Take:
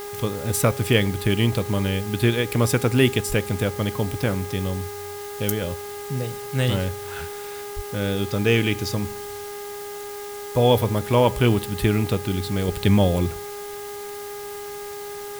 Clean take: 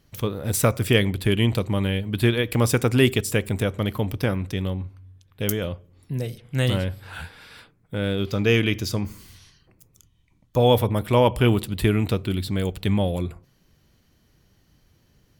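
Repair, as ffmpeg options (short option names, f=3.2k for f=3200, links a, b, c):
-filter_complex "[0:a]bandreject=f=409.5:t=h:w=4,bandreject=f=819:t=h:w=4,bandreject=f=1.2285k:t=h:w=4,bandreject=f=1.638k:t=h:w=4,bandreject=f=2.0475k:t=h:w=4,asplit=3[a][b][c];[a]afade=t=out:st=3.28:d=0.02[d];[b]highpass=f=140:w=0.5412,highpass=f=140:w=1.3066,afade=t=in:st=3.28:d=0.02,afade=t=out:st=3.4:d=0.02[e];[c]afade=t=in:st=3.4:d=0.02[f];[d][e][f]amix=inputs=3:normalize=0,asplit=3[g][h][i];[g]afade=t=out:st=7.75:d=0.02[j];[h]highpass=f=140:w=0.5412,highpass=f=140:w=1.3066,afade=t=in:st=7.75:d=0.02,afade=t=out:st=7.87:d=0.02[k];[i]afade=t=in:st=7.87:d=0.02[l];[j][k][l]amix=inputs=3:normalize=0,afwtdn=0.0089,asetnsamples=n=441:p=0,asendcmd='12.68 volume volume -4.5dB',volume=0dB"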